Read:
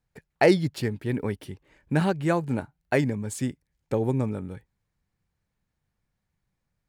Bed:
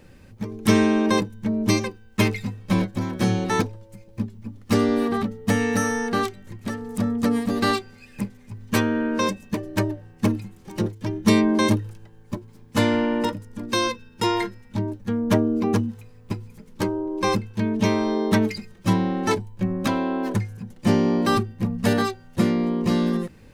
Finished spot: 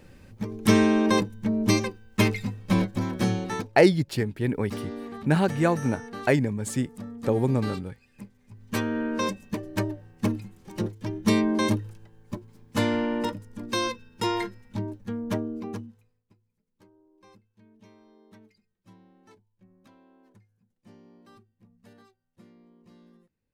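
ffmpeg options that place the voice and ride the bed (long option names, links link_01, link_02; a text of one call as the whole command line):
ffmpeg -i stem1.wav -i stem2.wav -filter_complex "[0:a]adelay=3350,volume=1.5dB[link_01];[1:a]volume=9dB,afade=type=out:start_time=3.11:duration=0.61:silence=0.211349,afade=type=in:start_time=8.34:duration=0.66:silence=0.298538,afade=type=out:start_time=14.64:duration=1.6:silence=0.0334965[link_02];[link_01][link_02]amix=inputs=2:normalize=0" out.wav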